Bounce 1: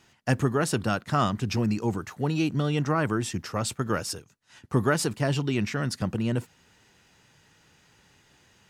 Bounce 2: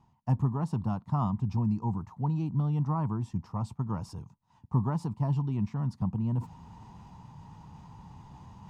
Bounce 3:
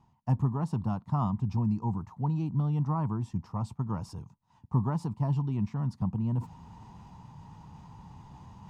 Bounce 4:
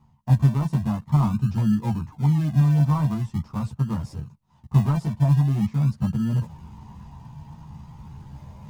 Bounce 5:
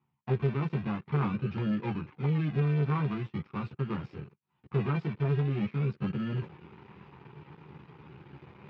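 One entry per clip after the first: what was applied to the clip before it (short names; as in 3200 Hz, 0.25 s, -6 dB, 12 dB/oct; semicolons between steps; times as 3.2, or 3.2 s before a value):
EQ curve 190 Hz 0 dB, 370 Hz -15 dB, 560 Hz -17 dB, 960 Hz +2 dB, 1500 Hz -25 dB, 5200 Hz -23 dB, 11000 Hz -28 dB; reverse; upward compressor, threshold -33 dBFS; reverse
nothing audible
in parallel at -8 dB: decimation with a swept rate 41×, swing 60% 0.44 Hz; on the sum: chorus voices 6, 0.83 Hz, delay 14 ms, depth 1 ms; gain +5 dB
sample leveller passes 2; speaker cabinet 200–3400 Hz, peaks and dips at 230 Hz -7 dB, 380 Hz +7 dB, 640 Hz -9 dB, 950 Hz -6 dB, 1400 Hz +3 dB, 2400 Hz +7 dB; gain -7.5 dB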